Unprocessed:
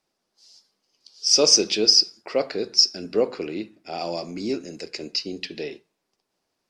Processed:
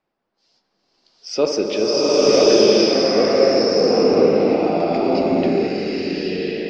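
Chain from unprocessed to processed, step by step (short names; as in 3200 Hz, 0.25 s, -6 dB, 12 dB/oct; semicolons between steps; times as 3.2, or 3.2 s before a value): LPF 2300 Hz 12 dB/oct; dark delay 70 ms, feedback 78%, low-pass 1600 Hz, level -9 dB; bloom reverb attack 1.05 s, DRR -9 dB; gain +2 dB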